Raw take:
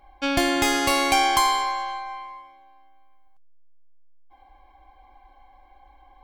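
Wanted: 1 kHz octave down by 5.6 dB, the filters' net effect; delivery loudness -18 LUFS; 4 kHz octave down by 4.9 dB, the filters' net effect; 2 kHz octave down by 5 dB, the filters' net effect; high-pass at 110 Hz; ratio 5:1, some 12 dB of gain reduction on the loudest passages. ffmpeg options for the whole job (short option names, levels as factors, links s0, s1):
-af "highpass=110,equalizer=f=1000:t=o:g=-6.5,equalizer=f=2000:t=o:g=-3,equalizer=f=4000:t=o:g=-5,acompressor=threshold=0.02:ratio=5,volume=8.41"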